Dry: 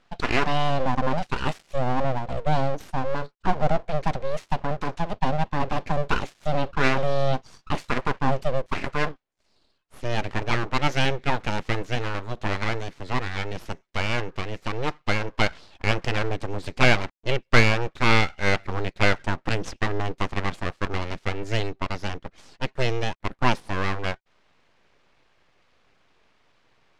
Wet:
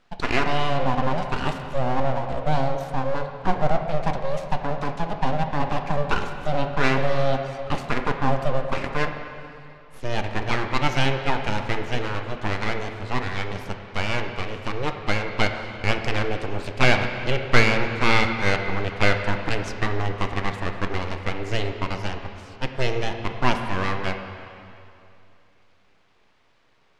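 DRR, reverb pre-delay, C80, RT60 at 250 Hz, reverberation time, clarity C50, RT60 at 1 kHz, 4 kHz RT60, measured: 5.0 dB, 6 ms, 7.0 dB, 2.7 s, 2.7 s, 6.0 dB, 2.6 s, 2.5 s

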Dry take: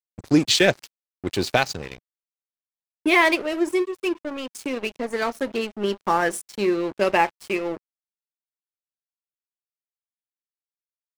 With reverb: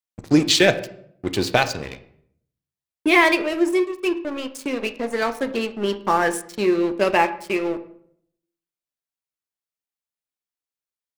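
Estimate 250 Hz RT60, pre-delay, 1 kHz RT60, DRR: 0.80 s, 9 ms, 0.60 s, 10.0 dB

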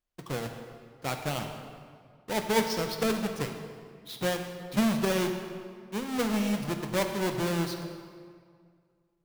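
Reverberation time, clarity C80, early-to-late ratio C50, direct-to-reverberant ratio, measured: 2.1 s, 7.0 dB, 6.5 dB, 4.5 dB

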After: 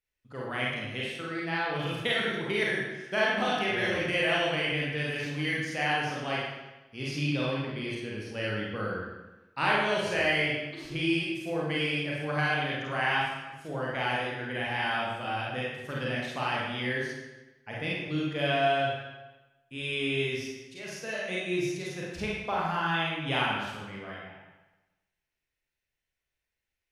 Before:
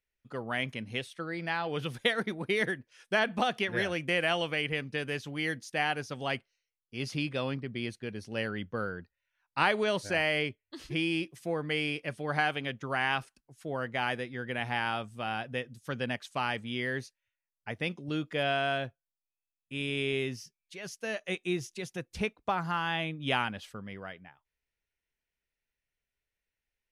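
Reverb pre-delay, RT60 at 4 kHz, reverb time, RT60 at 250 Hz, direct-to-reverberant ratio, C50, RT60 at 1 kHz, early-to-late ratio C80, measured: 35 ms, 0.95 s, 1.1 s, 1.1 s, -5.5 dB, -1.0 dB, 1.1 s, 2.0 dB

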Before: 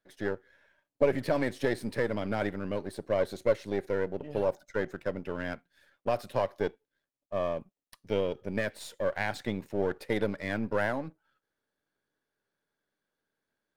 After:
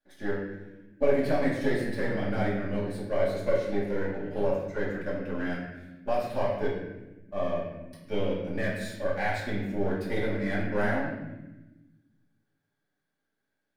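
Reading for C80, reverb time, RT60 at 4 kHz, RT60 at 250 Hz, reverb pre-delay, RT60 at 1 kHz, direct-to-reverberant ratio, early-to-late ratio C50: 4.5 dB, 1.1 s, 0.75 s, 1.7 s, 3 ms, 0.90 s, -8.0 dB, 1.5 dB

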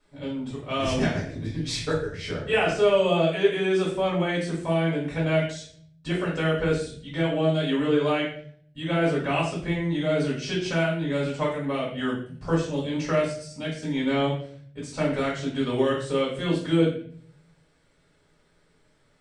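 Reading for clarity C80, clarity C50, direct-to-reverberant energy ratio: 8.5 dB, 4.0 dB, -7.5 dB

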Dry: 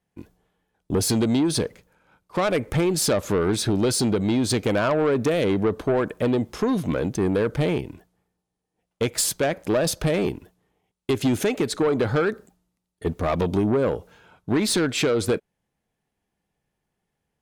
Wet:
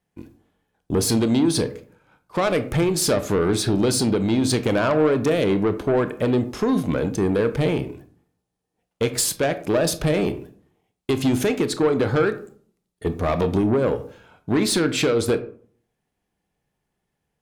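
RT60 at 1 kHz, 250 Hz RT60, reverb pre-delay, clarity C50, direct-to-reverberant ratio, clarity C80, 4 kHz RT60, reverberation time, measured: 0.45 s, 0.60 s, 23 ms, 14.0 dB, 10.5 dB, 18.5 dB, 0.30 s, 0.50 s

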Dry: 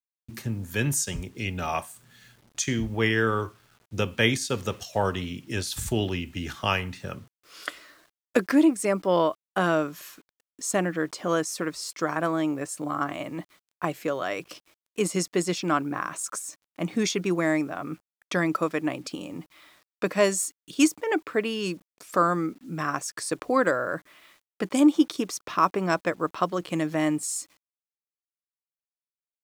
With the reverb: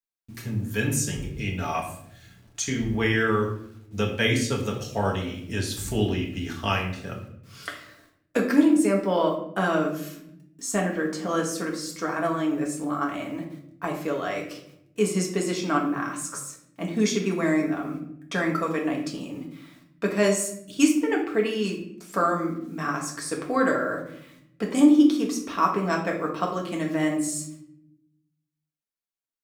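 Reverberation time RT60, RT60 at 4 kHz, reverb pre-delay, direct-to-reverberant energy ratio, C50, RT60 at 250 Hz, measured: 0.75 s, 0.50 s, 4 ms, -1.0 dB, 7.0 dB, 1.3 s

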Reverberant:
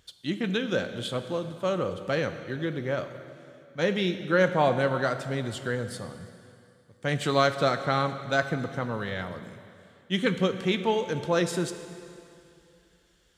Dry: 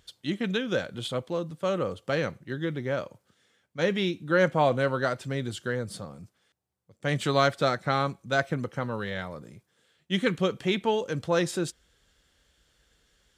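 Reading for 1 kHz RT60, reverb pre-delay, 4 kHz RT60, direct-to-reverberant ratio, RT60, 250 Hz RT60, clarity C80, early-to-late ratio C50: 2.6 s, 5 ms, 2.4 s, 9.0 dB, 2.6 s, 2.7 s, 11.0 dB, 10.0 dB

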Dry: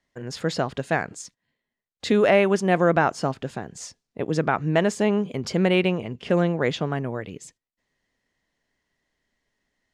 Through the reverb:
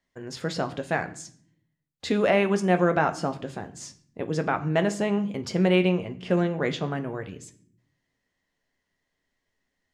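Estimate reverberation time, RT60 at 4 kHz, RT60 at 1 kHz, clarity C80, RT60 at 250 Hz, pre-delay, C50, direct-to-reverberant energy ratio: 0.60 s, 0.45 s, 0.50 s, 19.5 dB, 1.0 s, 11 ms, 16.0 dB, 7.0 dB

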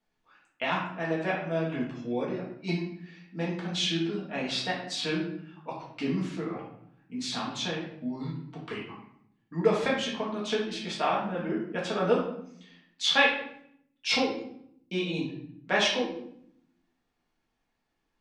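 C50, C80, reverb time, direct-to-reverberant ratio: 4.0 dB, 8.0 dB, 0.70 s, -5.0 dB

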